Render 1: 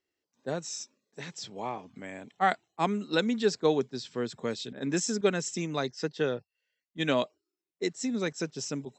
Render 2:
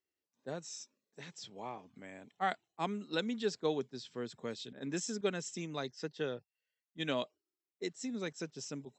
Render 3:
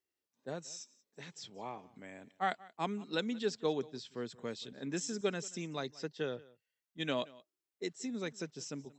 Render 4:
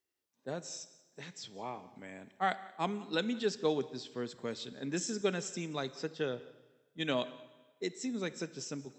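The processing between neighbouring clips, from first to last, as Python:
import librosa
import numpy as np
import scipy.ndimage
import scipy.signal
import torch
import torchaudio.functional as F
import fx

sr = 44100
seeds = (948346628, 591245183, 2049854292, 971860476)

y1 = fx.dynamic_eq(x, sr, hz=3200.0, q=3.3, threshold_db=-50.0, ratio=4.0, max_db=4)
y1 = y1 * librosa.db_to_amplitude(-8.5)
y2 = y1 + 10.0 ** (-22.0 / 20.0) * np.pad(y1, (int(180 * sr / 1000.0), 0))[:len(y1)]
y3 = fx.rev_plate(y2, sr, seeds[0], rt60_s=1.3, hf_ratio=0.95, predelay_ms=0, drr_db=14.5)
y3 = y3 * librosa.db_to_amplitude(2.0)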